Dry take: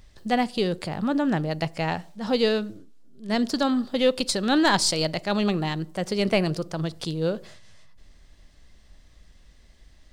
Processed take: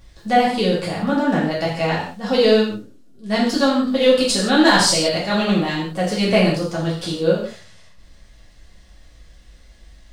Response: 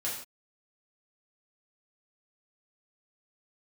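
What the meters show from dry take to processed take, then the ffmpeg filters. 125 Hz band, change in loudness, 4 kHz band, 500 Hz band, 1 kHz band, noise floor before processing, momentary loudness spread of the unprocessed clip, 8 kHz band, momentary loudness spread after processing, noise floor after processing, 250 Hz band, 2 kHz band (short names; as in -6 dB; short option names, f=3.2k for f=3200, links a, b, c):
+5.0 dB, +6.5 dB, +7.0 dB, +8.0 dB, +7.0 dB, -54 dBFS, 9 LU, +7.0 dB, 9 LU, -48 dBFS, +6.0 dB, +7.5 dB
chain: -filter_complex "[1:a]atrim=start_sample=2205[a];[0:a][a]afir=irnorm=-1:irlink=0,volume=3dB"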